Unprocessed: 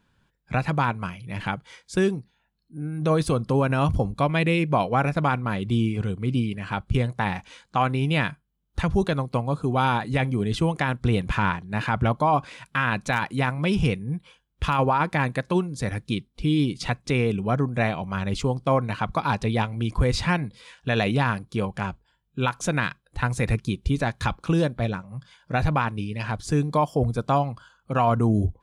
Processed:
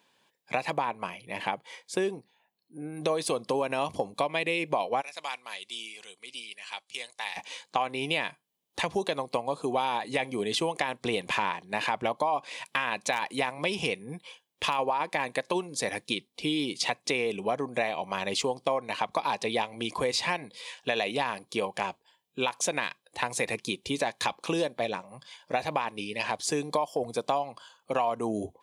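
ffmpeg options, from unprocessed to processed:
ffmpeg -i in.wav -filter_complex "[0:a]asettb=1/sr,asplit=3[link_01][link_02][link_03];[link_01]atrim=end=0.734[link_04];[link_02]atrim=start=0.73:end=2.97,asetpts=PTS-STARTPTS,afade=type=in:duration=0.004:curve=qsin,afade=type=out:start_time=2.236:duration=0.004:curve=qsin,equalizer=frequency=5800:width=0.47:gain=-7.5[link_05];[link_03]atrim=start=2.966[link_06];[link_04][link_05]acrossfade=duration=0.004:curve1=hsin:curve2=qsin[link_07];[link_07][link_06]acrossfade=duration=0.004:curve1=qsin:curve2=hsin,asplit=3[link_08][link_09][link_10];[link_08]afade=type=out:start_time=5:duration=0.02[link_11];[link_09]bandpass=frequency=6700:width_type=q:width=0.78,afade=type=in:start_time=5:duration=0.02,afade=type=out:start_time=7.36:duration=0.02[link_12];[link_10]afade=type=in:start_time=7.36:duration=0.02[link_13];[link_11][link_12][link_13]amix=inputs=3:normalize=0,highpass=510,equalizer=frequency=1400:width=3.4:gain=-15,acompressor=threshold=-32dB:ratio=5,volume=7dB" out.wav

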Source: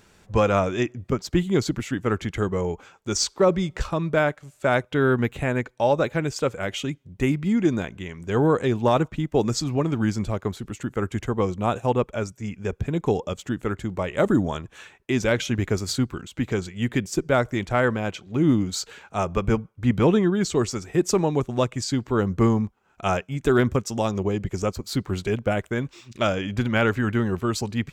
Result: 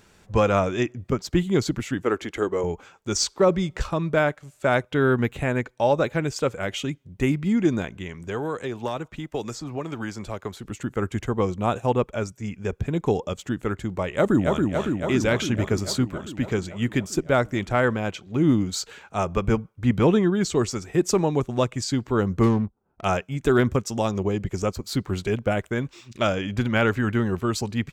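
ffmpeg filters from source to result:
ffmpeg -i in.wav -filter_complex "[0:a]asettb=1/sr,asplit=3[link_01][link_02][link_03];[link_01]atrim=end=2.024[link_04];[link_02]atrim=start=2.02:end=2.64,asetpts=PTS-STARTPTS,afade=type=in:duration=0.004:curve=qsin,afade=type=out:start_time=0.616:duration=0.004:curve=qsin,lowshelf=frequency=220:width_type=q:width=1.5:gain=-11[link_05];[link_03]atrim=start=2.636[link_06];[link_04][link_05]acrossfade=duration=0.004:curve1=hsin:curve2=qsin[link_07];[link_07][link_06]acrossfade=duration=0.004:curve1=qsin:curve2=hsin,asettb=1/sr,asplit=3[link_08][link_09][link_10];[link_08]atrim=end=8.144[link_11];[link_09]atrim=start=8.14:end=10.65,asetpts=PTS-STARTPTS,afade=type=in:duration=0.004:curve=qsin,afade=type=out:start_time=2.506:duration=0.004:curve=qsin,acrossover=split=400|1700[link_12][link_13][link_14];[link_12]acompressor=threshold=-35dB:ratio=4[link_15];[link_13]acompressor=threshold=-30dB:ratio=4[link_16];[link_14]acompressor=threshold=-40dB:ratio=4[link_17];[link_15][link_16][link_17]amix=inputs=3:normalize=0[link_18];[link_10]atrim=start=10.646[link_19];[link_11][link_18]acrossfade=duration=0.004:curve1=hsin:curve2=qsin[link_20];[link_20][link_19]acrossfade=duration=0.004:curve1=qsin:curve2=hsin,asplit=2[link_21][link_22];[link_22]afade=type=in:start_time=14.1:duration=0.01,afade=type=out:start_time=14.61:duration=0.01,aecho=0:1:280|560|840|1120|1400|1680|1960|2240|2520|2800|3080|3360:0.668344|0.501258|0.375943|0.281958|0.211468|0.158601|0.118951|0.0892131|0.0669099|0.0501824|0.0376368|0.0282276[link_23];[link_21][link_23]amix=inputs=2:normalize=0,asettb=1/sr,asplit=3[link_24][link_25][link_26];[link_24]atrim=end=22.434[link_27];[link_25]atrim=start=22.43:end=23.05,asetpts=PTS-STARTPTS,afade=type=in:duration=0.004:curve=qsin,afade=type=out:start_time=0.616:duration=0.004:curve=qsin,adynamicsmooth=sensitivity=6:basefreq=550[link_28];[link_26]atrim=start=23.046[link_29];[link_27][link_28]acrossfade=duration=0.004:curve1=hsin:curve2=qsin[link_30];[link_30][link_29]acrossfade=duration=0.004:curve1=qsin:curve2=hsin" out.wav

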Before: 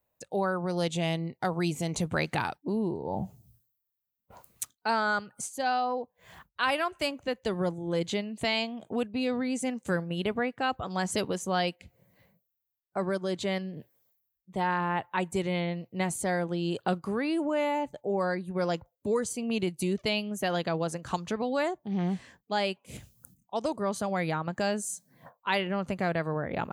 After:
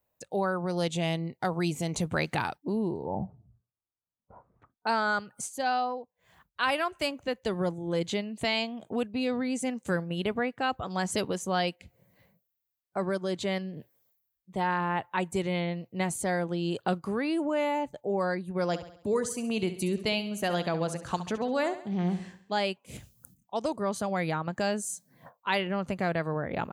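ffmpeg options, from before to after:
ffmpeg -i in.wav -filter_complex "[0:a]asettb=1/sr,asplit=3[link_01][link_02][link_03];[link_01]atrim=end=3.054[link_04];[link_02]atrim=start=3.05:end=4.87,asetpts=PTS-STARTPTS,afade=type=in:duration=0.004:curve=qsin,afade=type=out:start_time=1.816:duration=0.004:curve=qsin,lowpass=frequency=1300:width=0.5412,lowpass=frequency=1300:width=1.3066[link_05];[link_03]atrim=start=4.866[link_06];[link_04][link_05]acrossfade=duration=0.004:curve1=hsin:curve2=qsin[link_07];[link_07][link_06]acrossfade=duration=0.004:curve1=qsin:curve2=hsin,asplit=3[link_08][link_09][link_10];[link_08]afade=type=out:start_time=18.72:duration=0.02[link_11];[link_09]aecho=1:1:68|136|204|272|340:0.237|0.114|0.0546|0.0262|0.0126,afade=type=in:start_time=18.72:duration=0.02,afade=type=out:start_time=22.57:duration=0.02[link_12];[link_10]afade=type=in:start_time=22.57:duration=0.02[link_13];[link_11][link_12][link_13]amix=inputs=3:normalize=0,asplit=3[link_14][link_15][link_16];[link_14]atrim=end=6.06,asetpts=PTS-STARTPTS,afade=type=out:start_time=5.82:duration=0.24:silence=0.316228[link_17];[link_15]atrim=start=6.06:end=6.38,asetpts=PTS-STARTPTS,volume=-10dB[link_18];[link_16]atrim=start=6.38,asetpts=PTS-STARTPTS,afade=type=in:duration=0.24:silence=0.316228[link_19];[link_17][link_18][link_19]concat=n=3:v=0:a=1" out.wav

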